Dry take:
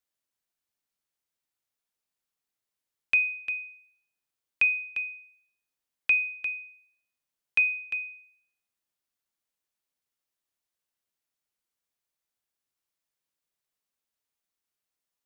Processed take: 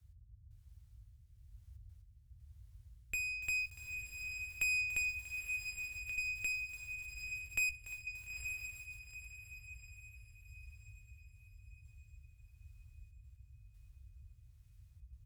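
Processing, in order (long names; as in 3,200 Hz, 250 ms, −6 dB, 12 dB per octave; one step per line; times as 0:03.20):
0:06.52–0:07.62: spectral tilt −1.5 dB per octave
downward compressor 10 to 1, threshold −26 dBFS, peak gain reduction 8 dB
gate pattern "x...xxxxxxxxxx." 119 BPM −24 dB
tube saturation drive 36 dB, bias 0.3
noise in a band 34–100 Hz −64 dBFS
rotating-speaker cabinet horn 1 Hz
double-tracking delay 17 ms −12.5 dB
feedback delay with all-pass diffusion 898 ms, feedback 43%, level −6 dB
feedback echo at a low word length 289 ms, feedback 55%, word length 9 bits, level −14 dB
level +7.5 dB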